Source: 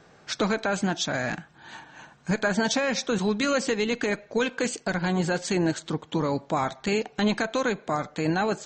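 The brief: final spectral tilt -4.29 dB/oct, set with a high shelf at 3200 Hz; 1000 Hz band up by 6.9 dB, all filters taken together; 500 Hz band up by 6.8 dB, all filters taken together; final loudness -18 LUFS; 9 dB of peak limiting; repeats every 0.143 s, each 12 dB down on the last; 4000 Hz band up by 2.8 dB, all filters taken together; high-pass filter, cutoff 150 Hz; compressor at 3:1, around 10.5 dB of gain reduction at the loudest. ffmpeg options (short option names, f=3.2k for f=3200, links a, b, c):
-af "highpass=150,equalizer=f=500:t=o:g=6.5,equalizer=f=1k:t=o:g=7,highshelf=f=3.2k:g=-4.5,equalizer=f=4k:t=o:g=6,acompressor=threshold=-29dB:ratio=3,alimiter=limit=-21dB:level=0:latency=1,aecho=1:1:143|286|429:0.251|0.0628|0.0157,volume=14.5dB"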